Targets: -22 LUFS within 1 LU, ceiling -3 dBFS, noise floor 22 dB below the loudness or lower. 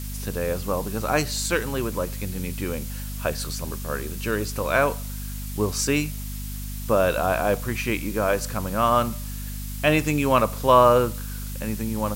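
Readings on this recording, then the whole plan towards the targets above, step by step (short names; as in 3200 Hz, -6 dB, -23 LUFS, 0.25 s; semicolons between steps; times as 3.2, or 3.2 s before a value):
hum 50 Hz; harmonics up to 250 Hz; hum level -30 dBFS; noise floor -32 dBFS; noise floor target -47 dBFS; loudness -24.5 LUFS; peak -4.0 dBFS; loudness target -22.0 LUFS
-> de-hum 50 Hz, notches 5; denoiser 15 dB, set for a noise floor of -32 dBFS; gain +2.5 dB; limiter -3 dBFS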